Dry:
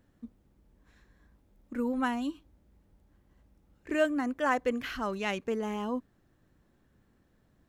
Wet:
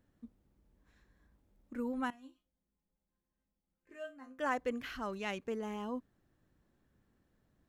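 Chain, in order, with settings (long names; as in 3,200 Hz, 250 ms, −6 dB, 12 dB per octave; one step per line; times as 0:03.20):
0:02.10–0:04.39: resonators tuned to a chord F3 minor, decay 0.23 s
level −6.5 dB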